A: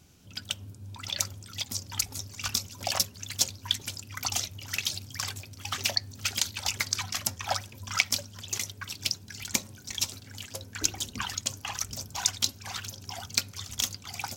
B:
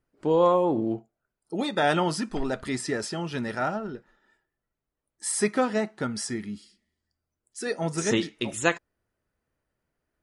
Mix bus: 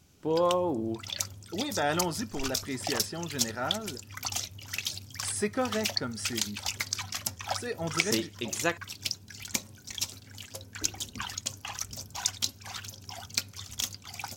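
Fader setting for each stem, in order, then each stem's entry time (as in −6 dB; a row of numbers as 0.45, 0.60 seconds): −3.0, −5.5 decibels; 0.00, 0.00 seconds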